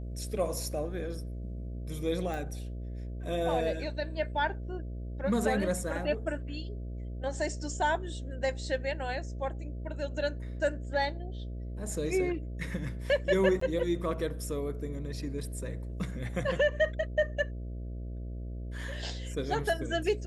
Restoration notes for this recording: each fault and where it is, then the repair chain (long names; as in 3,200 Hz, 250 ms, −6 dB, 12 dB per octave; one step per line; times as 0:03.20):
mains buzz 60 Hz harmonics 11 −38 dBFS
0:02.34: click
0:13.60–0:13.61: drop-out 14 ms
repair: click removal
hum removal 60 Hz, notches 11
repair the gap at 0:13.60, 14 ms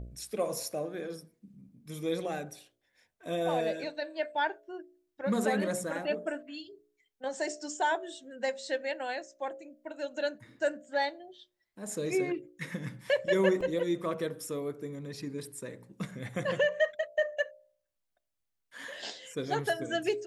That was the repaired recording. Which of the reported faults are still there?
none of them is left